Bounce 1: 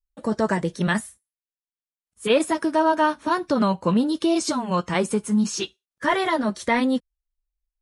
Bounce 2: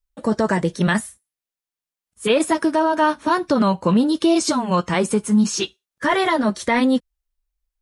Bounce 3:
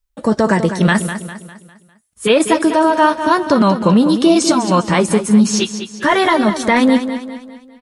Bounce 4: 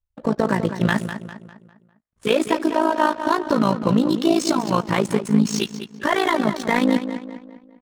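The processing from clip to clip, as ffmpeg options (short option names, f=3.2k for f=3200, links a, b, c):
-af "alimiter=level_in=12dB:limit=-1dB:release=50:level=0:latency=1,volume=-7.5dB"
-af "aecho=1:1:201|402|603|804|1005:0.316|0.139|0.0612|0.0269|0.0119,volume=5dB"
-af "adynamicsmooth=sensitivity=5:basefreq=1.6k,tremolo=f=55:d=0.824,volume=-3dB"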